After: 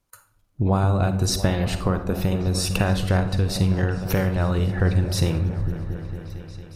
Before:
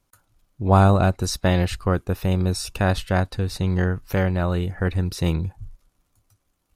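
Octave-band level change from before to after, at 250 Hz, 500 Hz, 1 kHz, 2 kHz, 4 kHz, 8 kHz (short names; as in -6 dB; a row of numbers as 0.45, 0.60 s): 0.0, -2.0, -4.5, -1.5, +2.5, +3.5 dB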